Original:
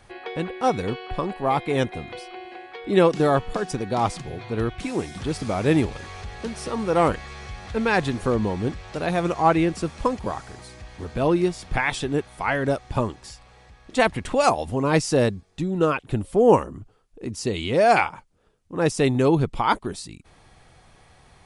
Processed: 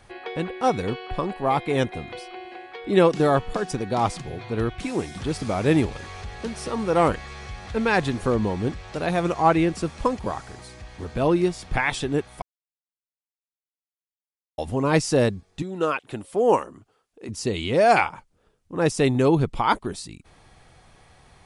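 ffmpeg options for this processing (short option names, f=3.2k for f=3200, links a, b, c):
-filter_complex "[0:a]asettb=1/sr,asplit=3[a][b][c];[a]atrim=end=15.624[d];[b]atrim=start=15.62:end=17.29,asetpts=PTS-STARTPTS,afade=t=in:d=0.004:c=qsin,afade=t=out:st=1.666:d=0.004:c=qsin,highpass=f=490:p=1[e];[c]atrim=start=17.286[f];[d][e]acrossfade=d=0.004:c1=hsin:c2=qsin[g];[g][f]acrossfade=d=0.004:c1=qsin:c2=hsin,asplit=3[h][i][j];[h]atrim=end=12.42,asetpts=PTS-STARTPTS,afade=t=out:st=12.416:d=0.004:c=hsin[k];[i]atrim=start=12.42:end=14.58,asetpts=PTS-STARTPTS,volume=0[l];[j]atrim=start=14.58,asetpts=PTS-STARTPTS,afade=t=in:d=0.004:c=hsin[m];[k][l][m]concat=n=3:v=0:a=1"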